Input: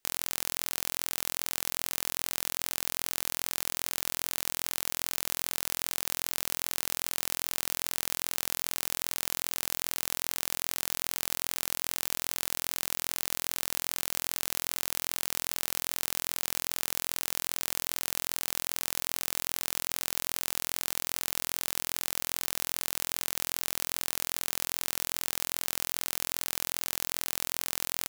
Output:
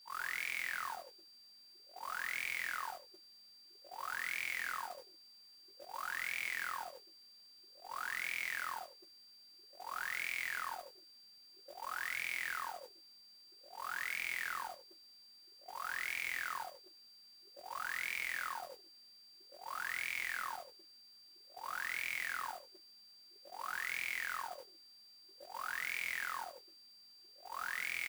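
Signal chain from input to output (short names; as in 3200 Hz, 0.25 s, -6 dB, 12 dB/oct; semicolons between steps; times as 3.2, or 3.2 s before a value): wah 0.51 Hz 230–2300 Hz, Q 17; comb 5.5 ms, depth 49%; echo 0.155 s -11.5 dB; gate -55 dBFS, range -43 dB; whine 4700 Hz -76 dBFS; HPF 180 Hz 24 dB/oct; modulation noise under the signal 12 dB; in parallel at +2 dB: limiter -51 dBFS, peak gain reduction 12.5 dB; on the sum: gain +10.5 dB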